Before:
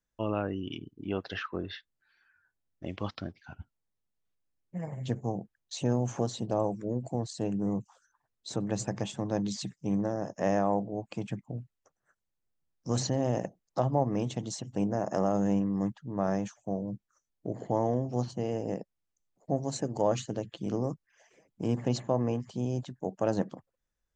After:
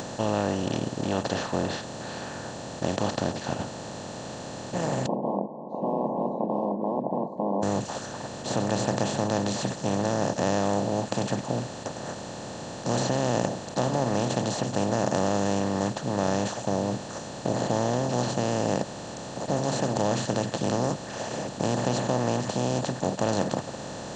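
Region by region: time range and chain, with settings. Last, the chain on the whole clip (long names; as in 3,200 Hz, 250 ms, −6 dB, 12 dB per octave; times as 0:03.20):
0:05.06–0:07.63: wrap-around overflow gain 27 dB + linear-phase brick-wall band-pass 180–1,100 Hz
whole clip: compressor on every frequency bin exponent 0.2; notch filter 1,300 Hz, Q 21; upward compression, threshold −31 dBFS; level −4 dB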